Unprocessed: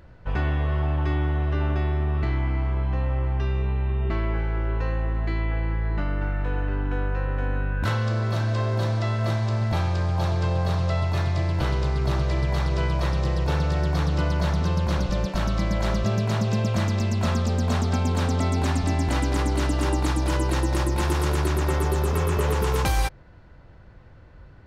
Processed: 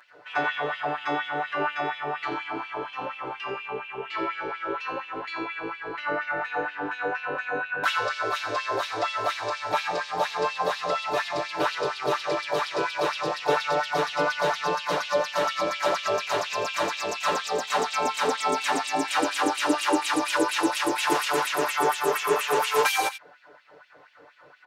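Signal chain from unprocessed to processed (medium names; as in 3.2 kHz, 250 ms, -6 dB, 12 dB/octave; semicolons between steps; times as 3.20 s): echo from a far wall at 15 m, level -11 dB; LFO high-pass sine 4.2 Hz 410–2900 Hz; comb 6.8 ms, depth 95%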